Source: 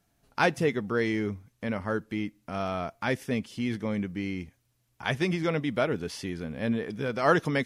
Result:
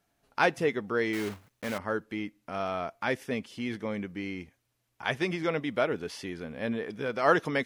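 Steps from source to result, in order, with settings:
0:01.13–0:01.79: one scale factor per block 3 bits
bass and treble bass −8 dB, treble −4 dB

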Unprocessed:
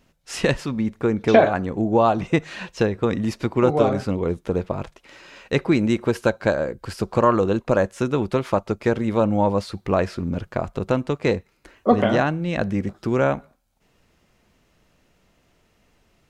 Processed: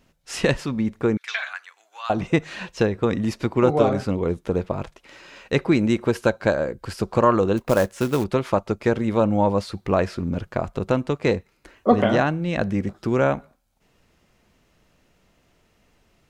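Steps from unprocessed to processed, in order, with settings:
0:01.17–0:02.10: high-pass filter 1,500 Hz 24 dB per octave
0:07.57–0:08.24: floating-point word with a short mantissa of 2 bits

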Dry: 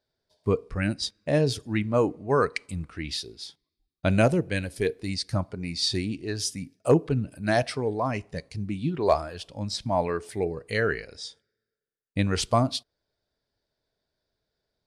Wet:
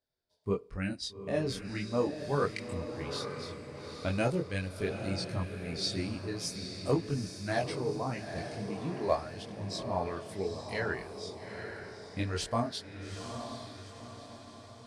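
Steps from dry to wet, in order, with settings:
multi-voice chorus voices 2, 0.41 Hz, delay 23 ms, depth 2.6 ms
feedback delay with all-pass diffusion 844 ms, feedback 50%, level −7.5 dB
level −5 dB

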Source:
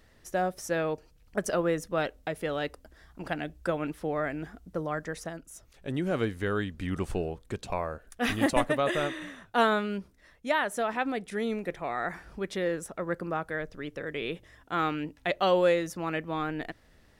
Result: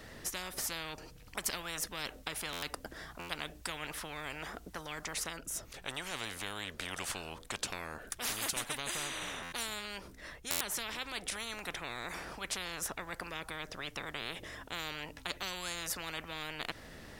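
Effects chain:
buffer that repeats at 0:02.52/0:03.19/0:09.42/0:10.50, samples 512
every bin compressed towards the loudest bin 10 to 1

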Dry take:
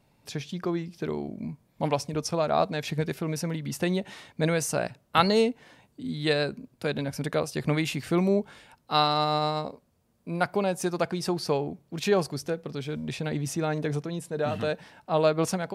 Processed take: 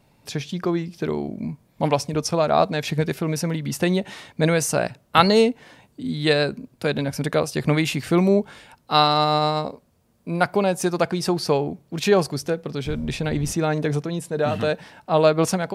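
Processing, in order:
0:12.85–0:13.51: wind on the microphone 120 Hz −28 dBFS
level +6 dB

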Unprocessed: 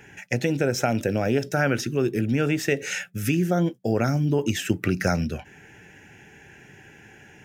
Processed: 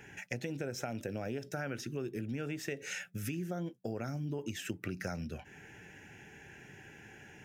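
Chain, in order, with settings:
downward compressor 3 to 1, threshold −34 dBFS, peak gain reduction 13.5 dB
level −4.5 dB

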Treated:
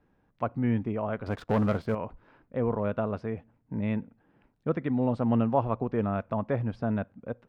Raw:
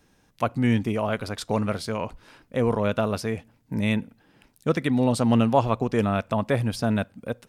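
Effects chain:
low-pass filter 1,500 Hz 12 dB per octave
0:01.26–0:01.95: leveller curve on the samples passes 2
level −5 dB

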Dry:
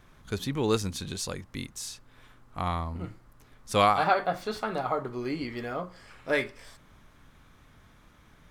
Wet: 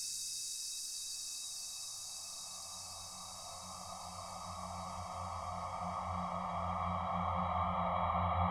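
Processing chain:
noise reduction from a noise print of the clip's start 19 dB
extreme stretch with random phases 27×, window 1.00 s, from 0:02.09
level +6.5 dB

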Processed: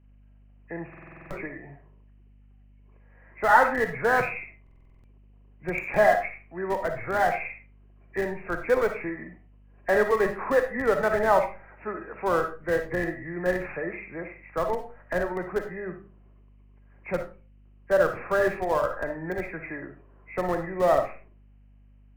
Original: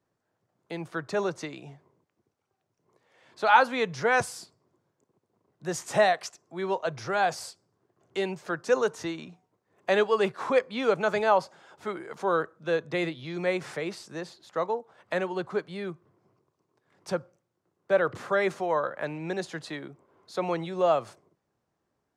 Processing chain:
hearing-aid frequency compression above 1,600 Hz 4 to 1
in parallel at −6 dB: comparator with hysteresis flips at −22 dBFS
on the sum: mains-hum notches 50/100/150/200 Hz
mains hum 50 Hz, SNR 29 dB
on a send at −6 dB: convolution reverb RT60 0.35 s, pre-delay 15 ms
on the sum: buffer that repeats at 0:00.89/0:04.62, samples 2,048, times 8

